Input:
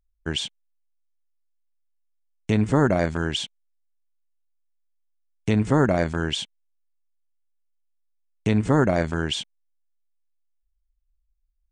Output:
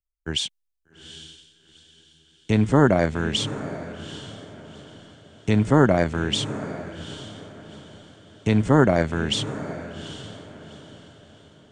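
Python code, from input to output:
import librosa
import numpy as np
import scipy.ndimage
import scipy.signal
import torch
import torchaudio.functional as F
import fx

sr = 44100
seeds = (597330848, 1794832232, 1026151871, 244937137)

y = fx.vibrato(x, sr, rate_hz=3.2, depth_cents=15.0)
y = fx.echo_diffused(y, sr, ms=799, feedback_pct=50, wet_db=-9.0)
y = fx.band_widen(y, sr, depth_pct=40)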